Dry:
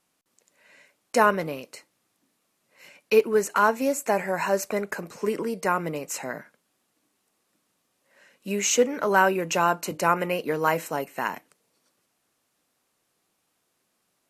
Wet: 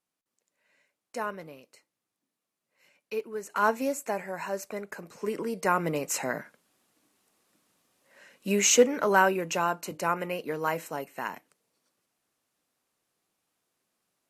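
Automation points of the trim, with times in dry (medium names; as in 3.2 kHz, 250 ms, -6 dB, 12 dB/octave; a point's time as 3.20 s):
3.42 s -14 dB
3.68 s -2.5 dB
4.25 s -9 dB
4.91 s -9 dB
6.00 s +2 dB
8.68 s +2 dB
9.73 s -6 dB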